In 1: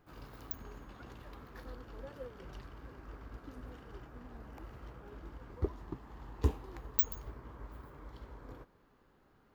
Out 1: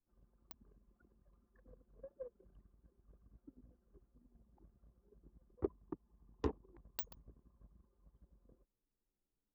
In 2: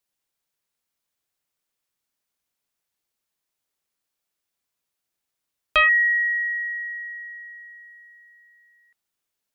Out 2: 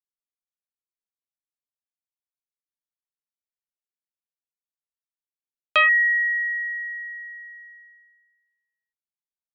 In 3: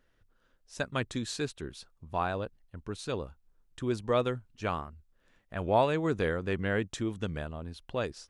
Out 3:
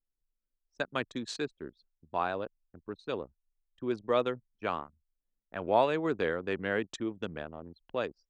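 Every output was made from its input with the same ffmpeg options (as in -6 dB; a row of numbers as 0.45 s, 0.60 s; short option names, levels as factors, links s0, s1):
-filter_complex "[0:a]anlmdn=1,acrossover=split=200 7700:gain=0.2 1 0.178[s0][s1][s2];[s0][s1][s2]amix=inputs=3:normalize=0"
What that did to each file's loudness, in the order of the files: -5.0 LU, 0.0 LU, -1.0 LU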